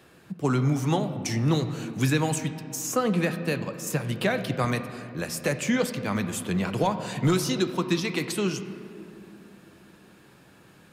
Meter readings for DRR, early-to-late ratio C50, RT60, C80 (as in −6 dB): 8.5 dB, 10.5 dB, 2.7 s, 11.0 dB